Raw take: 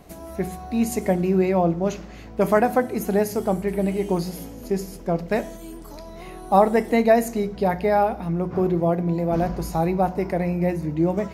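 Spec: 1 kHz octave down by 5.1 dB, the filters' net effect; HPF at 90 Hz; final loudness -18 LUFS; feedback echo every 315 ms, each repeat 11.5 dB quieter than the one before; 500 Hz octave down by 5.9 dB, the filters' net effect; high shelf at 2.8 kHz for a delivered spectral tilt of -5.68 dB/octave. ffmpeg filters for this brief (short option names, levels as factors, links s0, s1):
-af "highpass=90,equalizer=f=500:t=o:g=-7,equalizer=f=1000:t=o:g=-3,highshelf=f=2800:g=-5.5,aecho=1:1:315|630|945:0.266|0.0718|0.0194,volume=2.51"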